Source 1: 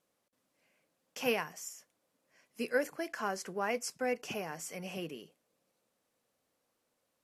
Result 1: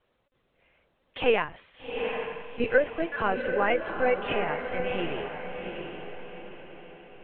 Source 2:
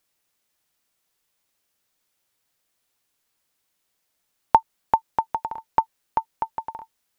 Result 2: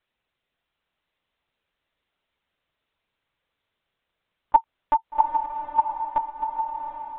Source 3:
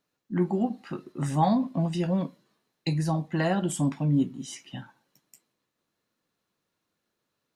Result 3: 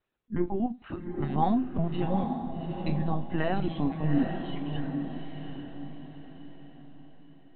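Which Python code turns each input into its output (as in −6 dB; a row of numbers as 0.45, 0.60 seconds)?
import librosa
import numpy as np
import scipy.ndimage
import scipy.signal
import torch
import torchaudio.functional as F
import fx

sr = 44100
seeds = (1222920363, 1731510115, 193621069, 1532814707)

y = fx.lpc_vocoder(x, sr, seeds[0], excitation='pitch_kept', order=16)
y = fx.echo_diffused(y, sr, ms=785, feedback_pct=44, wet_db=-5.5)
y = y * 10.0 ** (-30 / 20.0) / np.sqrt(np.mean(np.square(y)))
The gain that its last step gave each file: +9.0, −0.5, −2.0 decibels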